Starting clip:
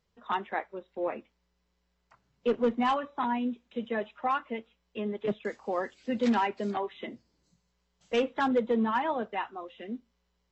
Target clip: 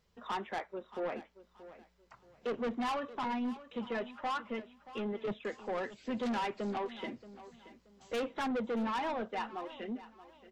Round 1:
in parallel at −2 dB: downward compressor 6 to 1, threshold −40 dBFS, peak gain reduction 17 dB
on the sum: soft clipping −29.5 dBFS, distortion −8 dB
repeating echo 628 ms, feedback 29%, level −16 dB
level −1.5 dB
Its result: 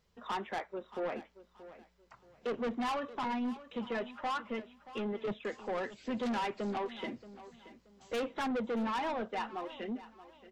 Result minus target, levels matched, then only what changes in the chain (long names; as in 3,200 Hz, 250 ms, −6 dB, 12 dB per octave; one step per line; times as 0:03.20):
downward compressor: peak gain reduction −7.5 dB
change: downward compressor 6 to 1, threshold −49 dBFS, peak gain reduction 24.5 dB